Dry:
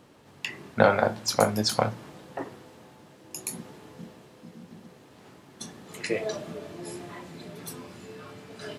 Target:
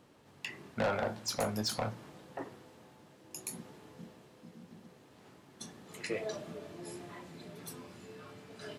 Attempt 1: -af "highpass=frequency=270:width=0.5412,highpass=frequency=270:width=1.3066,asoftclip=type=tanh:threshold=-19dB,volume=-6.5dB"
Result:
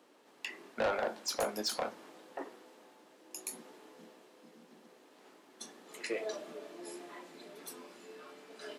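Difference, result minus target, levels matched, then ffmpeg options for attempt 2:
250 Hz band −4.5 dB
-af "asoftclip=type=tanh:threshold=-19dB,volume=-6.5dB"

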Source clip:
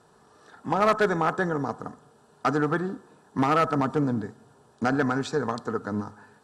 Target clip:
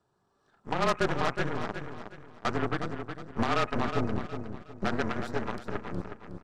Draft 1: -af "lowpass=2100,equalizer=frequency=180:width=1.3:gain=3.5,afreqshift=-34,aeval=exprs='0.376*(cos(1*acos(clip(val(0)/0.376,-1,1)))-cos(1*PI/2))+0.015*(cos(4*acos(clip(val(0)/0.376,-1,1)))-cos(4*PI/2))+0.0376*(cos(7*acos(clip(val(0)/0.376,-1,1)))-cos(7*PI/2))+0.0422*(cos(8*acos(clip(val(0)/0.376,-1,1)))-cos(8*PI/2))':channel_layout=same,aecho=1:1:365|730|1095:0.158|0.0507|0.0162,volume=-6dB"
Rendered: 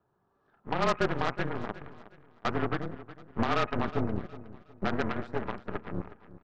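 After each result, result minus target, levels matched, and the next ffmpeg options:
echo-to-direct −8 dB; 8,000 Hz band −4.5 dB
-af "lowpass=2100,equalizer=frequency=180:width=1.3:gain=3.5,afreqshift=-34,aeval=exprs='0.376*(cos(1*acos(clip(val(0)/0.376,-1,1)))-cos(1*PI/2))+0.015*(cos(4*acos(clip(val(0)/0.376,-1,1)))-cos(4*PI/2))+0.0376*(cos(7*acos(clip(val(0)/0.376,-1,1)))-cos(7*PI/2))+0.0422*(cos(8*acos(clip(val(0)/0.376,-1,1)))-cos(8*PI/2))':channel_layout=same,aecho=1:1:365|730|1095|1460:0.398|0.127|0.0408|0.013,volume=-6dB"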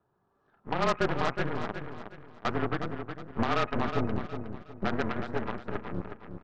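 8,000 Hz band −4.0 dB
-af "lowpass=7200,equalizer=frequency=180:width=1.3:gain=3.5,afreqshift=-34,aeval=exprs='0.376*(cos(1*acos(clip(val(0)/0.376,-1,1)))-cos(1*PI/2))+0.015*(cos(4*acos(clip(val(0)/0.376,-1,1)))-cos(4*PI/2))+0.0376*(cos(7*acos(clip(val(0)/0.376,-1,1)))-cos(7*PI/2))+0.0422*(cos(8*acos(clip(val(0)/0.376,-1,1)))-cos(8*PI/2))':channel_layout=same,aecho=1:1:365|730|1095|1460:0.398|0.127|0.0408|0.013,volume=-6dB"

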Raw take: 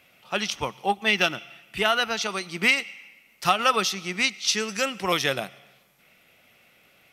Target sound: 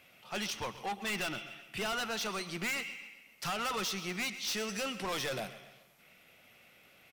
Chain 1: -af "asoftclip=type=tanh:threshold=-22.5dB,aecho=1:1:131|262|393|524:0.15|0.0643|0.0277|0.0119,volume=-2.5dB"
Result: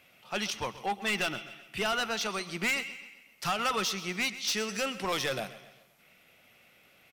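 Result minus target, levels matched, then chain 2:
soft clipping: distortion −4 dB
-af "asoftclip=type=tanh:threshold=-30dB,aecho=1:1:131|262|393|524:0.15|0.0643|0.0277|0.0119,volume=-2.5dB"

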